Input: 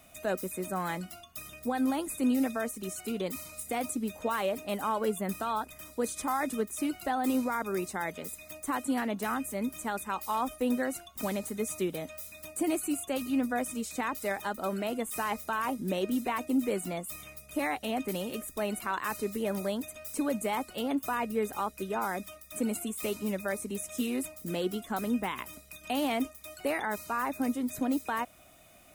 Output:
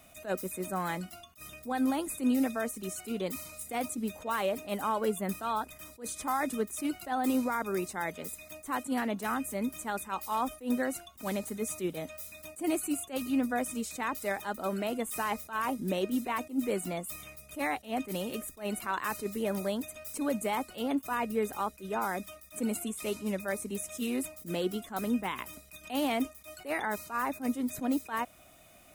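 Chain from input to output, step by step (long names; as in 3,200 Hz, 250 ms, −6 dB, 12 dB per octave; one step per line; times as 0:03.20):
0:22.84–0:23.40: low-pass filter 12,000 Hz 12 dB per octave
level that may rise only so fast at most 230 dB per second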